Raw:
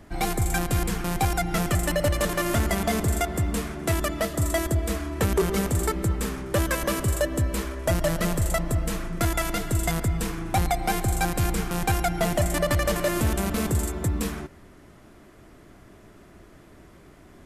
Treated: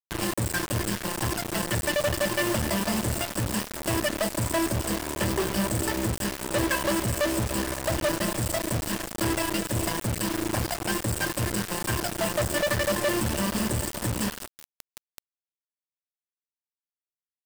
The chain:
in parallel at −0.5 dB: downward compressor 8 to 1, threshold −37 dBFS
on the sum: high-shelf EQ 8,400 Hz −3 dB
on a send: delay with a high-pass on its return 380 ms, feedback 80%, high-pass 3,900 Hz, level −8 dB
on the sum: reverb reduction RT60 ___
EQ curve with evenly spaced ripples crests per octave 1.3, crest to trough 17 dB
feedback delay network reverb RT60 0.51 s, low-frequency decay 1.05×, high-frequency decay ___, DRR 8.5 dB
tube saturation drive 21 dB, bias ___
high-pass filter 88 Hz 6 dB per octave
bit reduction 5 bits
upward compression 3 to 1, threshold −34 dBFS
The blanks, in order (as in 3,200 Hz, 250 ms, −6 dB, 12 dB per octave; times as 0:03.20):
0.54 s, 0.3×, 0.8